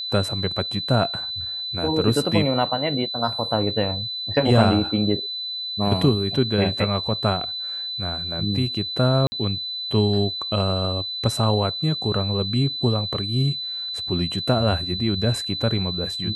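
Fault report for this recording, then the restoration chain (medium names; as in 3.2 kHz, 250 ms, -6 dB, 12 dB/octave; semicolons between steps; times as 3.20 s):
whine 4 kHz -27 dBFS
9.27–9.32 s: dropout 50 ms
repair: band-stop 4 kHz, Q 30; interpolate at 9.27 s, 50 ms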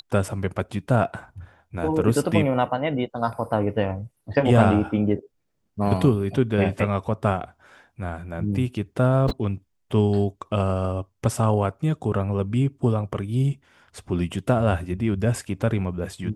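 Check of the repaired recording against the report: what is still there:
whine 4 kHz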